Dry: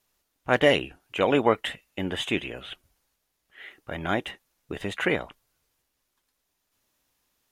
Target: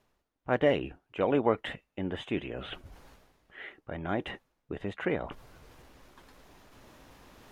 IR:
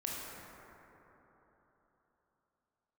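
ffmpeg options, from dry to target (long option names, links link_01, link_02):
-af "lowpass=frequency=1000:poles=1,areverse,acompressor=mode=upward:threshold=-27dB:ratio=2.5,areverse,volume=-3.5dB"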